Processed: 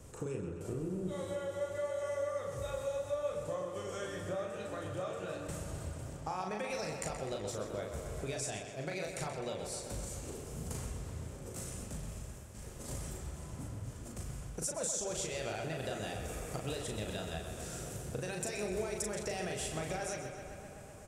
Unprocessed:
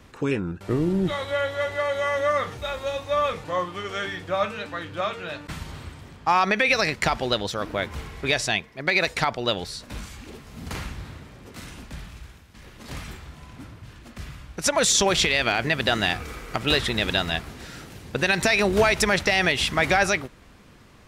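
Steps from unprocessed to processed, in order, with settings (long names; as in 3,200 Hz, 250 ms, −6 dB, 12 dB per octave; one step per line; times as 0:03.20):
graphic EQ with 10 bands 125 Hz +4 dB, 250 Hz −5 dB, 500 Hz +4 dB, 1,000 Hz −5 dB, 2,000 Hz −9 dB, 4,000 Hz −10 dB, 8,000 Hz +12 dB
downward compressor 4 to 1, threshold −37 dBFS, peak gain reduction 20 dB
double-tracking delay 38 ms −4 dB
tape delay 128 ms, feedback 83%, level −7 dB, low-pass 5,400 Hz
level −3 dB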